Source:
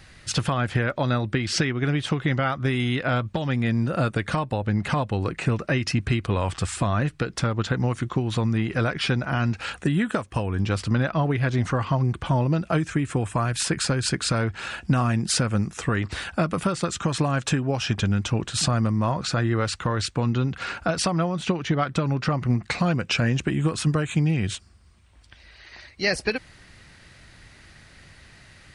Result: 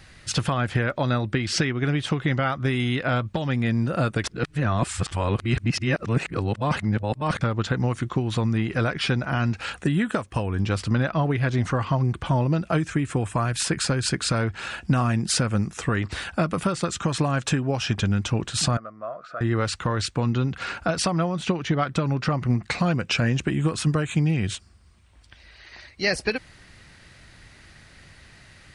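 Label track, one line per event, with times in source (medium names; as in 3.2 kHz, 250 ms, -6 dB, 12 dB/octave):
4.240000	7.410000	reverse
18.770000	19.410000	two resonant band-passes 900 Hz, apart 0.95 oct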